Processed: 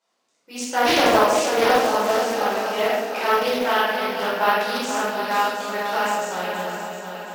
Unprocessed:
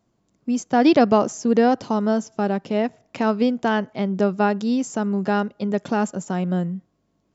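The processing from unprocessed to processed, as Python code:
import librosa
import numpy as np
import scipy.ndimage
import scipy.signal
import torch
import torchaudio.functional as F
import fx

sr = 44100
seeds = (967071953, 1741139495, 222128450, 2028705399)

p1 = fx.tilt_eq(x, sr, slope=4.0)
p2 = fx.doubler(p1, sr, ms=48.0, db=-5)
p3 = p2 + fx.echo_heads(p2, sr, ms=238, heads='second and third', feedback_pct=50, wet_db=-9.5, dry=0)
p4 = fx.room_shoebox(p3, sr, seeds[0], volume_m3=580.0, walls='mixed', distance_m=4.8)
p5 = (np.kron(scipy.signal.resample_poly(p4, 1, 3), np.eye(3)[0]) * 3)[:len(p4)]
p6 = fx.bandpass_edges(p5, sr, low_hz=380.0, high_hz=4700.0)
p7 = fx.doppler_dist(p6, sr, depth_ms=0.29)
y = p7 * librosa.db_to_amplitude(-8.0)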